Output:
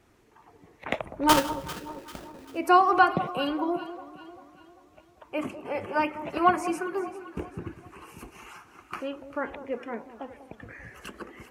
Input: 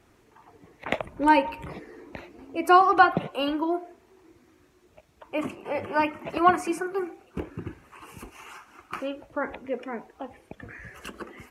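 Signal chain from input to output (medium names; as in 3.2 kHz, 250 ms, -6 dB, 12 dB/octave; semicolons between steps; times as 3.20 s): 1.29–2.48 s: sample-rate reducer 2.2 kHz, jitter 20%; on a send: echo whose repeats swap between lows and highs 197 ms, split 1.1 kHz, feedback 66%, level -12 dB; on the sum: trim -2 dB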